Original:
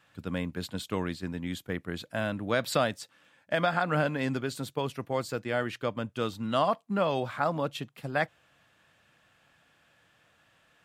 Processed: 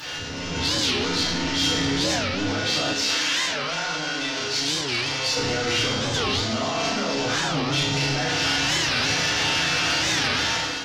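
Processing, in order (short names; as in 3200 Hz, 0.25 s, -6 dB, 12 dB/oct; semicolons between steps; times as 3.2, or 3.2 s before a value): delta modulation 32 kbps, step -23.5 dBFS; resonator bank C#2 minor, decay 0.34 s; limiter -34.5 dBFS, peak gain reduction 10.5 dB; FDN reverb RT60 0.93 s, low-frequency decay 1.25×, high-frequency decay 0.9×, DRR -7.5 dB; soft clip -26 dBFS, distortion -20 dB; high shelf 2600 Hz +9.5 dB; AGC gain up to 10 dB; 2.93–5.37 low shelf 450 Hz -11.5 dB; delay with a stepping band-pass 0.467 s, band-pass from 290 Hz, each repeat 1.4 oct, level -9 dB; record warp 45 rpm, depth 250 cents; gain -1.5 dB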